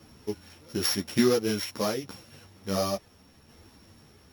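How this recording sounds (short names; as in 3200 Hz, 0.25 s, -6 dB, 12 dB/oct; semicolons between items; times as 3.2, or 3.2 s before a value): a buzz of ramps at a fixed pitch in blocks of 8 samples; tremolo saw down 0.86 Hz, depth 40%; a shimmering, thickened sound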